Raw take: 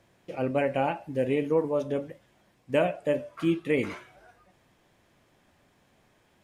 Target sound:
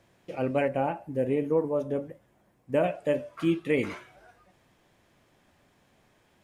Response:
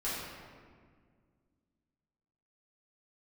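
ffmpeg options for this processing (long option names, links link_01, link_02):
-filter_complex "[0:a]asettb=1/sr,asplit=3[link_01][link_02][link_03];[link_01]atrim=end=0.684[link_04];[link_02]atrim=start=0.68:end=2.84,asetpts=PTS-STARTPTS,afade=type=in:duration=0.004:curve=qsin,afade=type=out:start_time=2.156:duration=0.004:curve=qsin,equalizer=frequency=3900:width_type=o:width=2.2:gain=-10[link_05];[link_03]atrim=start=2.836[link_06];[link_04][link_05]acrossfade=duration=0.004:curve1=hsin:curve2=qsin[link_07];[link_07][link_06]acrossfade=duration=0.004:curve1=qsin:curve2=hsin"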